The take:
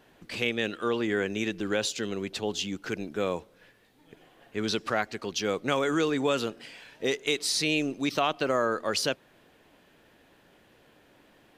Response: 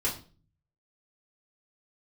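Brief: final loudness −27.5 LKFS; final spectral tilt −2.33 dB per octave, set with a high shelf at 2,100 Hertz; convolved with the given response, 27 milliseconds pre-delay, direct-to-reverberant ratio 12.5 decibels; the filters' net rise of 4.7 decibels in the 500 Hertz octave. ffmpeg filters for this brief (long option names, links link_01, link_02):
-filter_complex "[0:a]equalizer=frequency=500:width_type=o:gain=5,highshelf=frequency=2100:gain=8.5,asplit=2[link_01][link_02];[1:a]atrim=start_sample=2205,adelay=27[link_03];[link_02][link_03]afir=irnorm=-1:irlink=0,volume=-19.5dB[link_04];[link_01][link_04]amix=inputs=2:normalize=0,volume=-3.5dB"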